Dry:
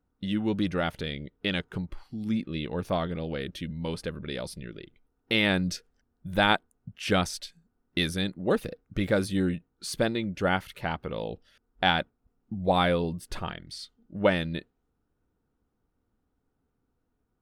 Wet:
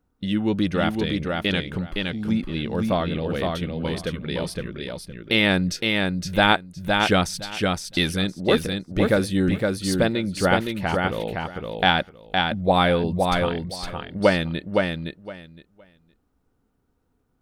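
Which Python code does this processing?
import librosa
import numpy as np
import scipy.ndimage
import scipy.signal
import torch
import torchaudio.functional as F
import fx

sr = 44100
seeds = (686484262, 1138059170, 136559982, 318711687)

y = fx.echo_feedback(x, sr, ms=514, feedback_pct=17, wet_db=-3.5)
y = F.gain(torch.from_numpy(y), 5.0).numpy()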